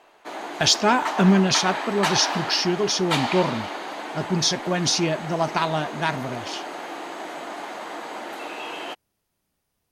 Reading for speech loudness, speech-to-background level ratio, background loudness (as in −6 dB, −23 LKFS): −22.0 LKFS, 8.5 dB, −30.5 LKFS